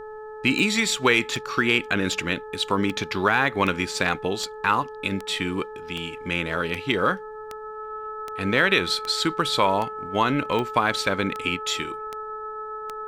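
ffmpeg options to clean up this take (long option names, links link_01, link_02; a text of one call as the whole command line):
ffmpeg -i in.wav -af "adeclick=threshold=4,bandreject=frequency=430.9:width_type=h:width=4,bandreject=frequency=861.8:width_type=h:width=4,bandreject=frequency=1292.7:width_type=h:width=4,bandreject=frequency=1723.6:width_type=h:width=4,bandreject=frequency=1300:width=30,agate=range=-21dB:threshold=-30dB" out.wav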